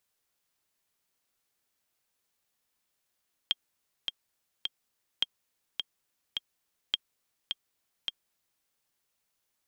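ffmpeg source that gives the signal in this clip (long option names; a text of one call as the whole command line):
ffmpeg -f lavfi -i "aevalsrc='pow(10,(-12.5-5.5*gte(mod(t,3*60/105),60/105))/20)*sin(2*PI*3220*mod(t,60/105))*exp(-6.91*mod(t,60/105)/0.03)':duration=5.14:sample_rate=44100" out.wav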